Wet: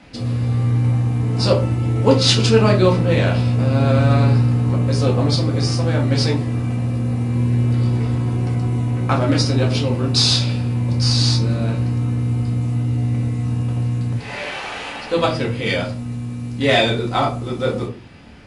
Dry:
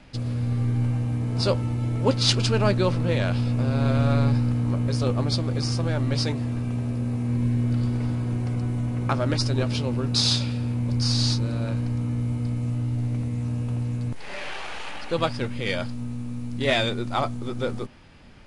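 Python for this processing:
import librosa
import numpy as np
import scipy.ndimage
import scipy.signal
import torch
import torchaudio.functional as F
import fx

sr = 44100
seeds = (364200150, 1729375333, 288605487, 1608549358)

y = scipy.signal.sosfilt(scipy.signal.butter(2, 54.0, 'highpass', fs=sr, output='sos'), x)
y = fx.room_shoebox(y, sr, seeds[0], volume_m3=190.0, walls='furnished', distance_m=2.0)
y = y * 10.0 ** (3.0 / 20.0)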